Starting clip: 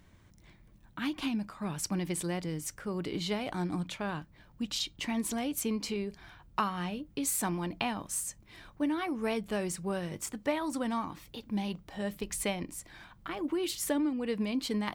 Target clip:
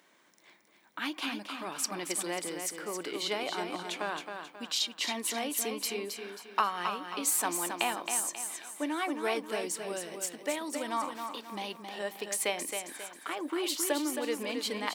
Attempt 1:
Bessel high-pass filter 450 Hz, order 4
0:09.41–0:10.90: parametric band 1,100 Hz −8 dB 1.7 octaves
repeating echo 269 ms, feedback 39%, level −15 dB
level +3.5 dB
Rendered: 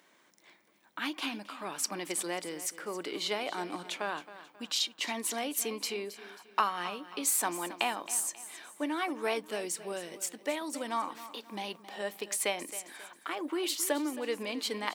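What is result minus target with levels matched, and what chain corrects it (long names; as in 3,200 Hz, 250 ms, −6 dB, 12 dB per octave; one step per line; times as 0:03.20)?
echo-to-direct −8.5 dB
Bessel high-pass filter 450 Hz, order 4
0:09.41–0:10.90: parametric band 1,100 Hz −8 dB 1.7 octaves
repeating echo 269 ms, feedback 39%, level −6.5 dB
level +3.5 dB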